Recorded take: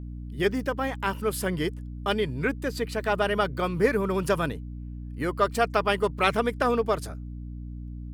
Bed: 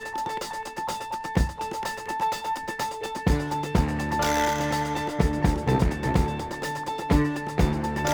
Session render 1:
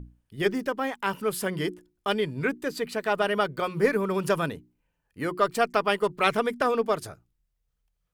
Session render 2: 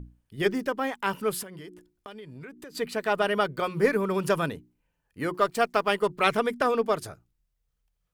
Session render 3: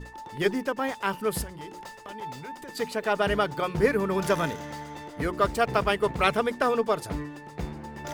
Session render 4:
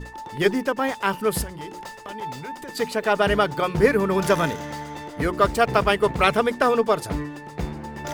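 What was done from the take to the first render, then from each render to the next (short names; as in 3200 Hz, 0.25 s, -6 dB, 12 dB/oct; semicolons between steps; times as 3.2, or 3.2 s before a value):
notches 60/120/180/240/300/360 Hz
1.42–2.75 compressor 12:1, threshold -39 dBFS; 5.34–5.94 G.711 law mismatch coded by A
add bed -12 dB
gain +5 dB; limiter -3 dBFS, peak gain reduction 1.5 dB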